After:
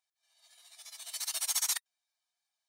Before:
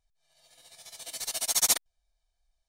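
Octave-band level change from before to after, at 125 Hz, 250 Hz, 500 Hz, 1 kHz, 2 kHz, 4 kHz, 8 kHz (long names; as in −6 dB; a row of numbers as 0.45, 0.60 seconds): can't be measured, below −40 dB, −15.0 dB, −7.5 dB, −4.0 dB, −5.0 dB, −5.5 dB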